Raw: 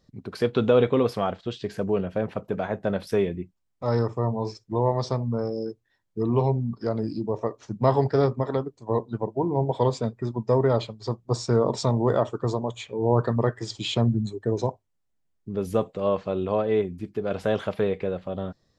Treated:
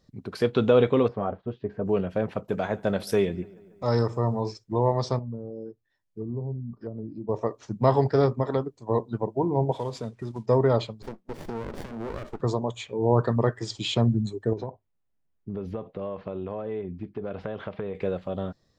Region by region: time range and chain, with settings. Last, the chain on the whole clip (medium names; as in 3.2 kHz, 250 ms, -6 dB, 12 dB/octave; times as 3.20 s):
1.08–1.86 s: low-pass 1.1 kHz + comb of notches 170 Hz
2.49–4.41 s: treble shelf 5 kHz +10 dB + filtered feedback delay 143 ms, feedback 64%, low-pass 3.4 kHz, level -23 dB
5.19–7.29 s: feedback comb 600 Hz, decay 0.17 s + low-pass that closes with the level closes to 320 Hz, closed at -29 dBFS
9.72–10.46 s: CVSD coder 64 kbps + low-pass 7.2 kHz + compression 2:1, threshold -33 dBFS
11.02–12.41 s: compression 3:1, threshold -28 dBFS + brick-wall FIR high-pass 160 Hz + sliding maximum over 33 samples
14.53–17.95 s: compression 10:1, threshold -27 dBFS + distance through air 300 m
whole clip: none